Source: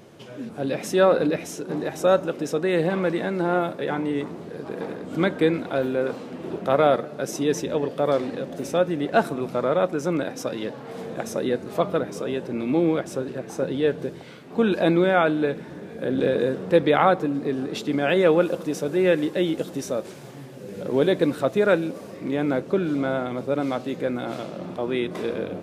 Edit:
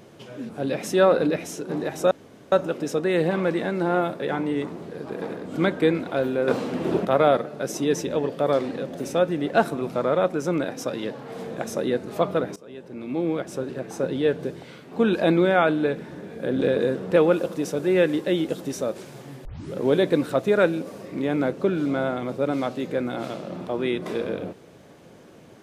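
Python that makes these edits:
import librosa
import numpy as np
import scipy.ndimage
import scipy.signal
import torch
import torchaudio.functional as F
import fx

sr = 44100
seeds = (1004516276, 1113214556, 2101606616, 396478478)

y = fx.edit(x, sr, fx.insert_room_tone(at_s=2.11, length_s=0.41),
    fx.clip_gain(start_s=6.07, length_s=0.57, db=8.0),
    fx.fade_in_from(start_s=12.15, length_s=1.23, floor_db=-21.0),
    fx.cut(start_s=16.75, length_s=1.5),
    fx.tape_start(start_s=20.54, length_s=0.3), tone=tone)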